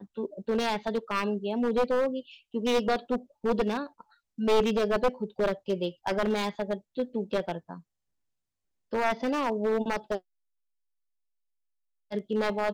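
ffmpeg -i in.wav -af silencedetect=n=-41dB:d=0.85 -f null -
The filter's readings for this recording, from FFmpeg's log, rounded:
silence_start: 7.79
silence_end: 8.93 | silence_duration: 1.14
silence_start: 10.18
silence_end: 12.11 | silence_duration: 1.93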